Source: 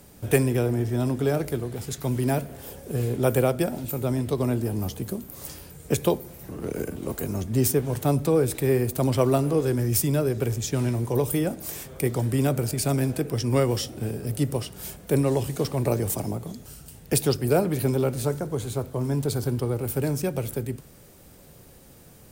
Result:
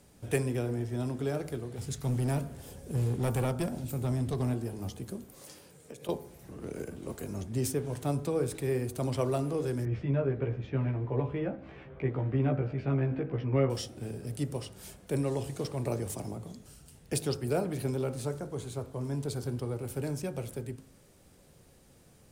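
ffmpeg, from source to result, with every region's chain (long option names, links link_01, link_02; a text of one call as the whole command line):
ffmpeg -i in.wav -filter_complex "[0:a]asettb=1/sr,asplit=3[link_01][link_02][link_03];[link_01]atrim=end=1.784[link_04];[link_02]atrim=start=1.78:end=4.54,asetpts=PTS-STARTPTS,afade=type=in:duration=0.004:curve=qsin,afade=type=out:start_time=2.756:duration=0.004:curve=qsin,bass=frequency=250:gain=7,treble=frequency=4000:gain=3,asoftclip=type=hard:threshold=-17dB[link_05];[link_03]atrim=start=4.536[link_06];[link_04][link_05]acrossfade=duration=0.004:curve1=hsin:curve2=qsin[link_07];[link_07][link_06]acrossfade=duration=0.004:curve1=qsin:curve2=hsin,asettb=1/sr,asplit=3[link_08][link_09][link_10];[link_08]atrim=end=5.344[link_11];[link_09]atrim=start=5.34:end=6.09,asetpts=PTS-STARTPTS,afade=type=in:duration=0.004:curve=qsin,afade=type=out:start_time=0.746:duration=0.004:curve=qsin,highpass=160,equalizer=frequency=510:width=4.8:gain=4.5,acompressor=threshold=-31dB:ratio=16:attack=3.2:release=140:knee=1:detection=peak[link_12];[link_10]atrim=start=6.086[link_13];[link_11][link_12]acrossfade=duration=0.004:curve1=hsin:curve2=qsin[link_14];[link_14][link_13]acrossfade=duration=0.004:curve1=qsin:curve2=hsin,asettb=1/sr,asplit=3[link_15][link_16][link_17];[link_15]atrim=end=9.854[link_18];[link_16]atrim=start=9.85:end=13.7,asetpts=PTS-STARTPTS,afade=type=in:duration=0.004:curve=qsin,afade=type=out:start_time=3.846:duration=0.004:curve=qsin,lowpass=frequency=2500:width=0.5412,lowpass=frequency=2500:width=1.3066,asplit=2[link_19][link_20];[link_20]adelay=15,volume=-2.5dB[link_21];[link_19][link_21]amix=inputs=2:normalize=0,atrim=end_sample=169785[link_22];[link_17]atrim=start=13.696[link_23];[link_18][link_22]acrossfade=duration=0.004:curve1=hsin:curve2=qsin[link_24];[link_24][link_23]acrossfade=duration=0.004:curve1=qsin:curve2=hsin,lowpass=11000,bandreject=frequency=53.06:width_type=h:width=4,bandreject=frequency=106.12:width_type=h:width=4,bandreject=frequency=159.18:width_type=h:width=4,bandreject=frequency=212.24:width_type=h:width=4,bandreject=frequency=265.3:width_type=h:width=4,bandreject=frequency=318.36:width_type=h:width=4,bandreject=frequency=371.42:width_type=h:width=4,bandreject=frequency=424.48:width_type=h:width=4,bandreject=frequency=477.54:width_type=h:width=4,bandreject=frequency=530.6:width_type=h:width=4,bandreject=frequency=583.66:width_type=h:width=4,bandreject=frequency=636.72:width_type=h:width=4,bandreject=frequency=689.78:width_type=h:width=4,bandreject=frequency=742.84:width_type=h:width=4,bandreject=frequency=795.9:width_type=h:width=4,bandreject=frequency=848.96:width_type=h:width=4,bandreject=frequency=902.02:width_type=h:width=4,bandreject=frequency=955.08:width_type=h:width=4,bandreject=frequency=1008.14:width_type=h:width=4,bandreject=frequency=1061.2:width_type=h:width=4,bandreject=frequency=1114.26:width_type=h:width=4,bandreject=frequency=1167.32:width_type=h:width=4,bandreject=frequency=1220.38:width_type=h:width=4,bandreject=frequency=1273.44:width_type=h:width=4,bandreject=frequency=1326.5:width_type=h:width=4,bandreject=frequency=1379.56:width_type=h:width=4,bandreject=frequency=1432.62:width_type=h:width=4,bandreject=frequency=1485.68:width_type=h:width=4,bandreject=frequency=1538.74:width_type=h:width=4,bandreject=frequency=1591.8:width_type=h:width=4,bandreject=frequency=1644.86:width_type=h:width=4,volume=-8dB" out.wav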